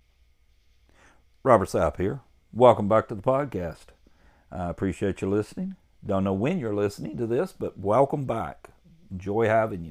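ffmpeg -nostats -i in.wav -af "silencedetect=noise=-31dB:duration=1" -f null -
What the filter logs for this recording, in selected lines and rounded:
silence_start: 0.00
silence_end: 1.45 | silence_duration: 1.45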